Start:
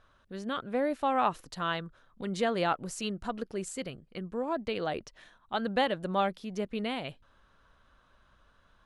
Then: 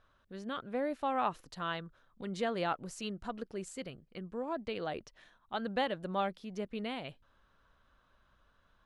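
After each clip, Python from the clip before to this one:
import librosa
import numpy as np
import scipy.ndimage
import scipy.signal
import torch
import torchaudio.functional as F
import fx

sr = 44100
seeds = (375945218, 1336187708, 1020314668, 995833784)

y = fx.peak_eq(x, sr, hz=9700.0, db=-3.5, octaves=1.0)
y = y * 10.0 ** (-5.0 / 20.0)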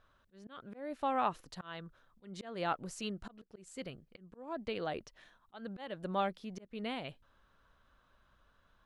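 y = fx.auto_swell(x, sr, attack_ms=288.0)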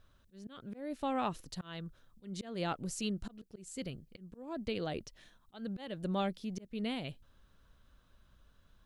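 y = fx.peak_eq(x, sr, hz=1100.0, db=-12.0, octaves=2.9)
y = y * 10.0 ** (7.5 / 20.0)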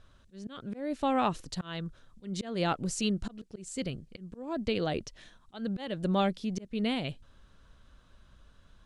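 y = scipy.signal.sosfilt(scipy.signal.butter(4, 9700.0, 'lowpass', fs=sr, output='sos'), x)
y = y * 10.0 ** (6.5 / 20.0)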